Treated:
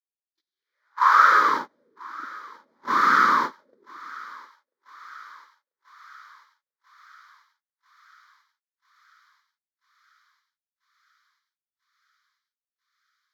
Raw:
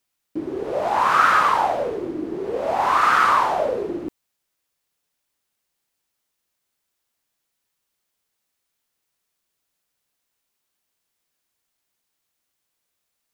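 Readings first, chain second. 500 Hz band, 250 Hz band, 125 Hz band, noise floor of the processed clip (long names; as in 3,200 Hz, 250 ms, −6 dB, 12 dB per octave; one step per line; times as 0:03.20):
−16.0 dB, −9.5 dB, below −10 dB, below −85 dBFS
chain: phaser with its sweep stopped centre 2,700 Hz, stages 6
noise gate −24 dBFS, range −37 dB
high-pass filter sweep 3,800 Hz → 230 Hz, 0:00.51–0:01.62
on a send: feedback echo with a high-pass in the loop 991 ms, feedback 76%, high-pass 1,000 Hz, level −19.5 dB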